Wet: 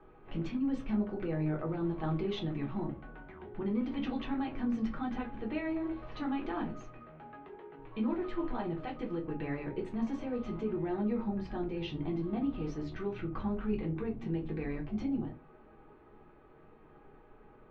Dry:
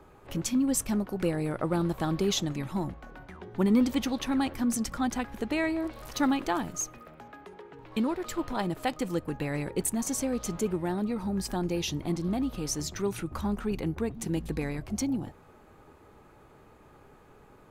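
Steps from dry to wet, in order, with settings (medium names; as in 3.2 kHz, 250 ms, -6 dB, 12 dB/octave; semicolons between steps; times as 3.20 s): low-pass 3 kHz 24 dB/octave; peak limiter -23 dBFS, peak gain reduction 9 dB; reverberation, pre-delay 3 ms, DRR -1 dB; trim -8 dB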